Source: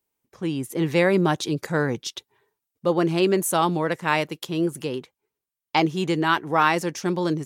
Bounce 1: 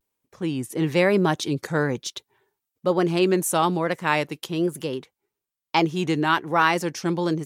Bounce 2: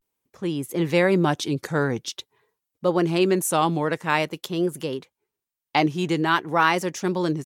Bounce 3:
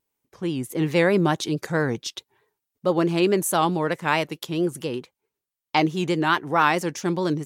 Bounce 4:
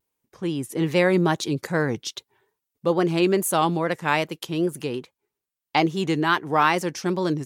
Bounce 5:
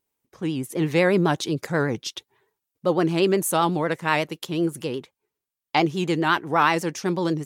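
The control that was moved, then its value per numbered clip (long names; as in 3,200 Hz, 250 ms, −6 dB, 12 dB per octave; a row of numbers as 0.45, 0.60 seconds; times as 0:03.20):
pitch vibrato, speed: 1.1, 0.48, 4.6, 2.4, 8.1 Hertz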